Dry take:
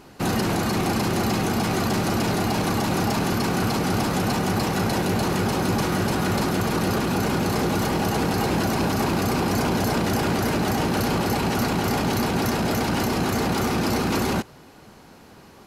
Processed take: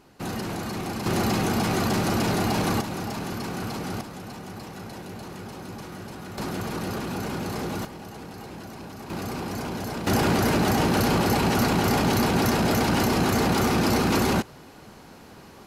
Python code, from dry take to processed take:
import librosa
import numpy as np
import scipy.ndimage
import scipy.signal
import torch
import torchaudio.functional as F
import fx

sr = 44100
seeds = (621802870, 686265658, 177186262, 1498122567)

y = fx.gain(x, sr, db=fx.steps((0.0, -8.0), (1.06, -1.0), (2.81, -8.5), (4.01, -15.5), (6.38, -7.5), (7.85, -17.0), (9.1, -9.0), (10.07, 1.0)))